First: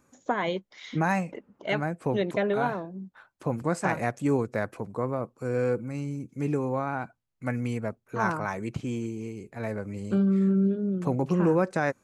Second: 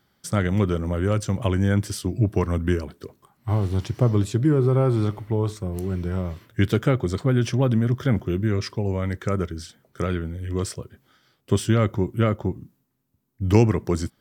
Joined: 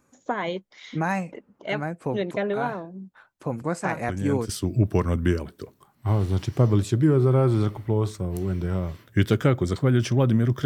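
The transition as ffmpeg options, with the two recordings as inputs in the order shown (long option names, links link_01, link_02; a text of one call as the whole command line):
ffmpeg -i cue0.wav -i cue1.wav -filter_complex "[1:a]asplit=2[link_01][link_02];[0:a]apad=whole_dur=10.65,atrim=end=10.65,atrim=end=4.492[link_03];[link_02]atrim=start=1.908:end=8.07[link_04];[link_01]atrim=start=1.5:end=1.91,asetpts=PTS-STARTPTS,volume=-9dB,afade=type=in:duration=0.004:curve=hsin,afade=type=out:start_time=0.406:duration=0.004:curve=hsin,adelay=4080[link_05];[link_03][link_04]acrossfade=duration=0.004:curve1=hsin:curve2=hsin[link_06];[link_06][link_05]amix=inputs=2:normalize=0" out.wav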